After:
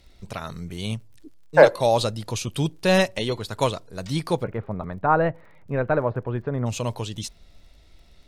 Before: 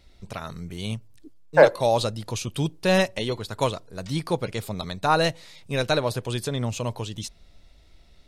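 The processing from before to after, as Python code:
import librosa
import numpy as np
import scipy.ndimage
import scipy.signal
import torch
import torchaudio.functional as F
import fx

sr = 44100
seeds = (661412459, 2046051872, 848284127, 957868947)

y = fx.lowpass(x, sr, hz=1700.0, slope=24, at=(4.42, 6.65), fade=0.02)
y = fx.dmg_crackle(y, sr, seeds[0], per_s=43.0, level_db=-50.0)
y = y * 10.0 ** (1.5 / 20.0)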